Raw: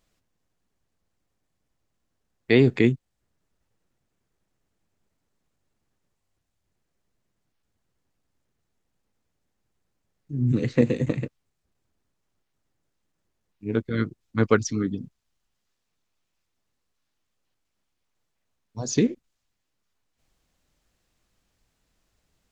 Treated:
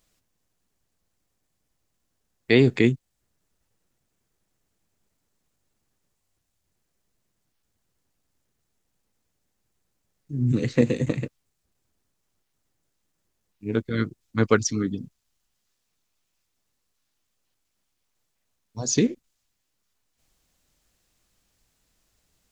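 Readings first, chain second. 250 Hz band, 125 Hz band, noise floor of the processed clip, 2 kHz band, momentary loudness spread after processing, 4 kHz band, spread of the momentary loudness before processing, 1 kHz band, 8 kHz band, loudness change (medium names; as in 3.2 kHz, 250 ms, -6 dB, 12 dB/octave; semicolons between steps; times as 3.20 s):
0.0 dB, 0.0 dB, -77 dBFS, +1.5 dB, 16 LU, +3.5 dB, 16 LU, +0.5 dB, no reading, 0.0 dB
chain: treble shelf 4.6 kHz +8.5 dB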